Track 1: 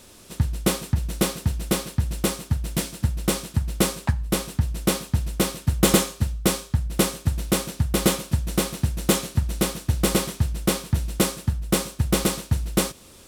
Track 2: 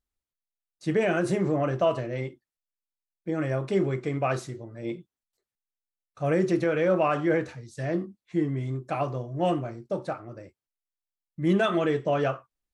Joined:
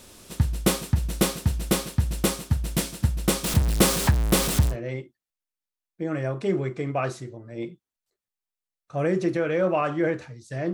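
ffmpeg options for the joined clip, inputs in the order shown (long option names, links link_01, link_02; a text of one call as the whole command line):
ffmpeg -i cue0.wav -i cue1.wav -filter_complex "[0:a]asettb=1/sr,asplit=3[link_01][link_02][link_03];[link_01]atrim=end=3.444[link_04];[link_02]atrim=start=3.44:end=4.76,asetpts=PTS-STARTPTS,afade=type=in:duration=0.004:curve=qsin,afade=type=out:start_time=1.316:duration=0.004:curve=qsin,aeval=exprs='val(0)+0.5*0.0794*sgn(val(0))':channel_layout=same[link_05];[link_03]atrim=start=4.756[link_06];[link_04][link_05]acrossfade=duration=0.004:curve1=hsin:curve2=qsin[link_07];[link_07][link_06]acrossfade=duration=0.004:curve1=qsin:curve2=hsin,apad=whole_dur=10.73,atrim=end=10.73,atrim=end=4.76,asetpts=PTS-STARTPTS[link_08];[1:a]atrim=start=1.95:end=8,asetpts=PTS-STARTPTS[link_09];[link_08][link_09]acrossfade=duration=0.08:curve1=tri:curve2=tri" out.wav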